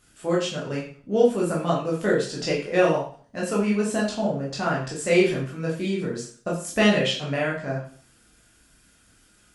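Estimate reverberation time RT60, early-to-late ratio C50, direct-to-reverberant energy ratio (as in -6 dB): 0.45 s, 5.5 dB, -5.0 dB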